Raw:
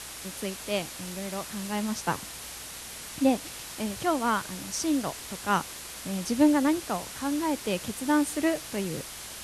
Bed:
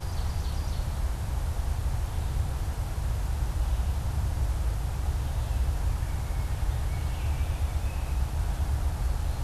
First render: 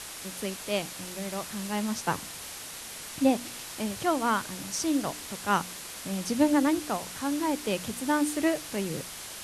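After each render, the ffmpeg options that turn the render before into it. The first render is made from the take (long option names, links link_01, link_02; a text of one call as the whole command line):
ffmpeg -i in.wav -af "bandreject=frequency=60:width_type=h:width=4,bandreject=frequency=120:width_type=h:width=4,bandreject=frequency=180:width_type=h:width=4,bandreject=frequency=240:width_type=h:width=4,bandreject=frequency=300:width_type=h:width=4" out.wav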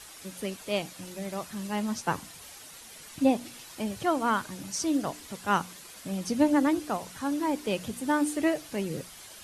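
ffmpeg -i in.wav -af "afftdn=noise_reduction=9:noise_floor=-41" out.wav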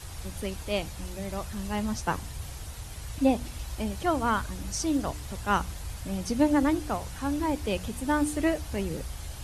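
ffmpeg -i in.wav -i bed.wav -filter_complex "[1:a]volume=-10dB[link_01];[0:a][link_01]amix=inputs=2:normalize=0" out.wav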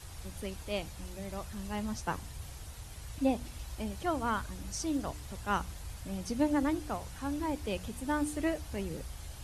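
ffmpeg -i in.wav -af "volume=-6dB" out.wav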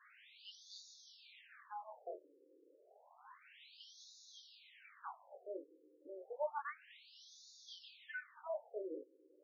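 ffmpeg -i in.wav -af "flanger=delay=18.5:depth=6.6:speed=0.22,afftfilt=real='re*between(b*sr/1024,370*pow(5000/370,0.5+0.5*sin(2*PI*0.3*pts/sr))/1.41,370*pow(5000/370,0.5+0.5*sin(2*PI*0.3*pts/sr))*1.41)':imag='im*between(b*sr/1024,370*pow(5000/370,0.5+0.5*sin(2*PI*0.3*pts/sr))/1.41,370*pow(5000/370,0.5+0.5*sin(2*PI*0.3*pts/sr))*1.41)':win_size=1024:overlap=0.75" out.wav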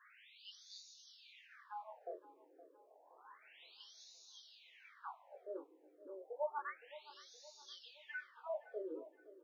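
ffmpeg -i in.wav -filter_complex "[0:a]asplit=2[link_01][link_02];[link_02]adelay=518,lowpass=frequency=1700:poles=1,volume=-15.5dB,asplit=2[link_03][link_04];[link_04]adelay=518,lowpass=frequency=1700:poles=1,volume=0.5,asplit=2[link_05][link_06];[link_06]adelay=518,lowpass=frequency=1700:poles=1,volume=0.5,asplit=2[link_07][link_08];[link_08]adelay=518,lowpass=frequency=1700:poles=1,volume=0.5,asplit=2[link_09][link_10];[link_10]adelay=518,lowpass=frequency=1700:poles=1,volume=0.5[link_11];[link_01][link_03][link_05][link_07][link_09][link_11]amix=inputs=6:normalize=0" out.wav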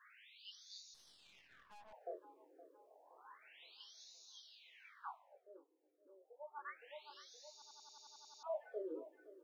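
ffmpeg -i in.wav -filter_complex "[0:a]asettb=1/sr,asplit=3[link_01][link_02][link_03];[link_01]atrim=end=0.944[link_04];[link_02]atrim=start=0.94:end=1.93,asetpts=PTS-STARTPTS,afade=type=in:duration=0.004:curve=qsin,afade=type=out:start_time=0.986:duration=0.004:curve=qsin,aeval=exprs='(tanh(794*val(0)+0.8)-tanh(0.8))/794':channel_layout=same[link_05];[link_03]atrim=start=1.926[link_06];[link_04][link_05]acrossfade=duration=0.004:curve1=hsin:curve2=qsin[link_07];[link_07][link_06]acrossfade=duration=0.004:curve1=qsin:curve2=hsin,asplit=13[link_08][link_09][link_10][link_11][link_12][link_13][link_14][link_15][link_16][link_17][link_18][link_19][link_20];[link_08]atrim=end=5.42,asetpts=PTS-STARTPTS,afade=type=out:start_time=5.09:duration=0.33:silence=0.199526[link_21];[link_09]atrim=start=5.42:end=6.5,asetpts=PTS-STARTPTS,volume=-14dB[link_22];[link_10]atrim=start=6.5:end=7.622,asetpts=PTS-STARTPTS,afade=type=in:duration=0.33:silence=0.199526[link_23];[link_11]atrim=start=7.528:end=7.622[link_24];[link_12]atrim=start=7.528:end=7.622[link_25];[link_13]atrim=start=7.528:end=7.622[link_26];[link_14]atrim=start=7.528:end=7.622[link_27];[link_15]atrim=start=7.528:end=7.622[link_28];[link_16]atrim=start=7.528:end=7.622[link_29];[link_17]atrim=start=7.528:end=7.622[link_30];[link_18]atrim=start=7.528:end=7.622[link_31];[link_19]atrim=start=7.528:end=7.622[link_32];[link_20]atrim=start=8.428[link_33];[link_21][link_22][link_23]concat=n=3:v=0:a=1[link_34];[link_34][link_24]acrossfade=duration=0.004:curve1=hsin:curve2=hsin[link_35];[link_35][link_25]acrossfade=duration=0.004:curve1=hsin:curve2=hsin[link_36];[link_36][link_26]acrossfade=duration=0.004:curve1=hsin:curve2=hsin[link_37];[link_37][link_27]acrossfade=duration=0.004:curve1=hsin:curve2=hsin[link_38];[link_38][link_28]acrossfade=duration=0.004:curve1=hsin:curve2=hsin[link_39];[link_39][link_29]acrossfade=duration=0.004:curve1=hsin:curve2=hsin[link_40];[link_40][link_30]acrossfade=duration=0.004:curve1=hsin:curve2=hsin[link_41];[link_41][link_31]acrossfade=duration=0.004:curve1=hsin:curve2=hsin[link_42];[link_42][link_32]acrossfade=duration=0.004:curve1=hsin:curve2=hsin[link_43];[link_43][link_33]acrossfade=duration=0.004:curve1=hsin:curve2=hsin" out.wav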